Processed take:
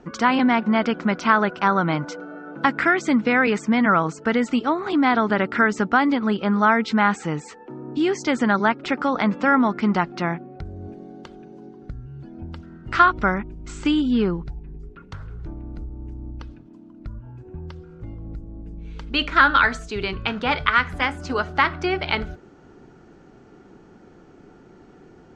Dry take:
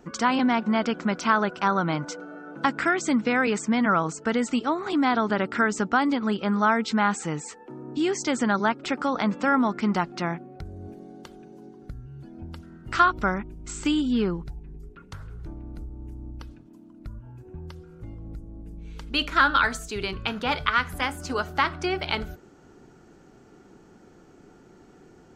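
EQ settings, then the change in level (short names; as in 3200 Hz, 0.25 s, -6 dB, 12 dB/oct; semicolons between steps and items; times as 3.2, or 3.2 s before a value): dynamic EQ 2000 Hz, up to +4 dB, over -36 dBFS, Q 2.4; air absorption 110 m; +4.0 dB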